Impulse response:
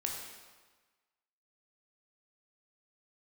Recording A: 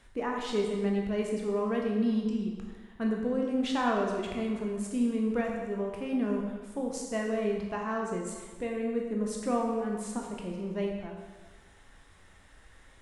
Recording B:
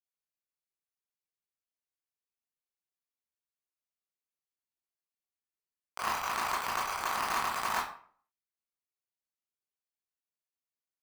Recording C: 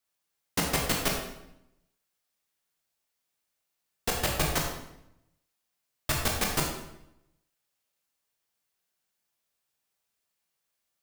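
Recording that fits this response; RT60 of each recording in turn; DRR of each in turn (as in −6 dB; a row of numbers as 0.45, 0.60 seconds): A; 1.4, 0.50, 0.85 seconds; −0.5, −8.5, −0.5 decibels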